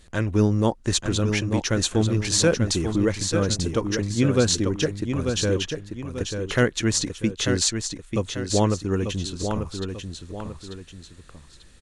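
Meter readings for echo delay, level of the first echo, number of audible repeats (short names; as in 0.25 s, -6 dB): 0.891 s, -6.5 dB, 2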